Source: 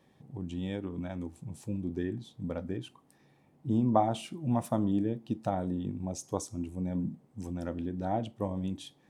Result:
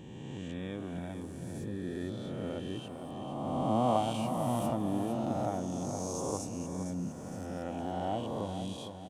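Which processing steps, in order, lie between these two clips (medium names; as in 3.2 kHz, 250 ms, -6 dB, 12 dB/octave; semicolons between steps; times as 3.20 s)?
reverse spectral sustain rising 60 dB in 2.39 s; feedback delay 459 ms, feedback 43%, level -8.5 dB; trim -6 dB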